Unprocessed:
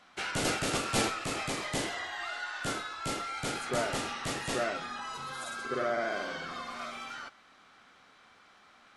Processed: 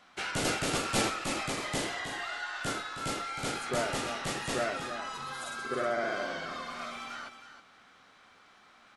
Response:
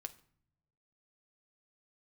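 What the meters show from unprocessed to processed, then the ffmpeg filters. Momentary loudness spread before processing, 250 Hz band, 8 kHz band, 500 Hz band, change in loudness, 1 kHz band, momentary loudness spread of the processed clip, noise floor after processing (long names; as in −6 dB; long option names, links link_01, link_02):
10 LU, +0.5 dB, +0.5 dB, +0.5 dB, +0.5 dB, +0.5 dB, 10 LU, −60 dBFS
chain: -af "aecho=1:1:316:0.316"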